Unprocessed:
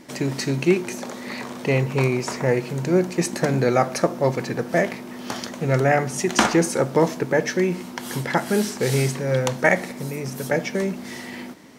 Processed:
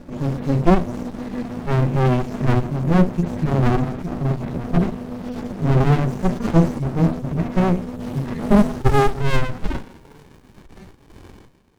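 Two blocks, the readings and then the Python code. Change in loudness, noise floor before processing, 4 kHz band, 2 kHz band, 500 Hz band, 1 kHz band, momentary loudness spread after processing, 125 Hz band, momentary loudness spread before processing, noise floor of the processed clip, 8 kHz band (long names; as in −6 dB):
+2.0 dB, −36 dBFS, −6.5 dB, −6.5 dB, −3.0 dB, +1.0 dB, 12 LU, +6.0 dB, 12 LU, −49 dBFS, below −10 dB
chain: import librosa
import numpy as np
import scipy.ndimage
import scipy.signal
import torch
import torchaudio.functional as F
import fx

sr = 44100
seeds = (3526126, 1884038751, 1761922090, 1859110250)

y = fx.hpss_only(x, sr, part='harmonic')
y = fx.peak_eq(y, sr, hz=490.0, db=10.0, octaves=1.4)
y = fx.chorus_voices(y, sr, voices=6, hz=1.5, base_ms=10, depth_ms=3.0, mix_pct=25)
y = fx.filter_sweep_highpass(y, sr, from_hz=160.0, to_hz=2600.0, start_s=8.24, end_s=10.68, q=3.0)
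y = fx.running_max(y, sr, window=65)
y = F.gain(torch.from_numpy(y), 3.0).numpy()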